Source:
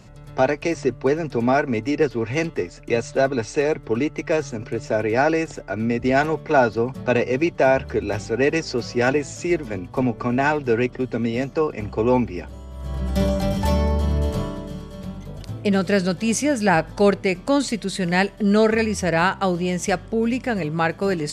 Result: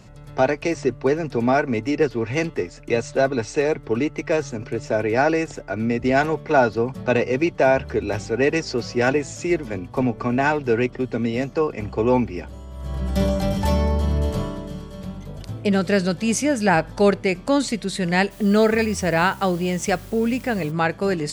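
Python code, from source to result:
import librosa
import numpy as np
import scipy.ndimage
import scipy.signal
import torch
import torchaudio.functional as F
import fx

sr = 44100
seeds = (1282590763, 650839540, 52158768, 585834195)

y = fx.quant_dither(x, sr, seeds[0], bits=8, dither='triangular', at=(18.3, 20.7), fade=0.02)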